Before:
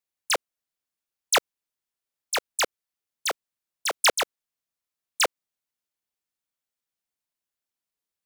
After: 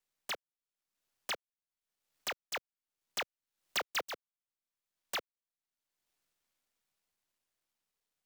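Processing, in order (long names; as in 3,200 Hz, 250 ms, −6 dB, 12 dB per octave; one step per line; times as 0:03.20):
gap after every zero crossing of 0.053 ms
source passing by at 0:03.75, 9 m/s, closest 1.6 metres
multiband upward and downward compressor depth 100%
level +3 dB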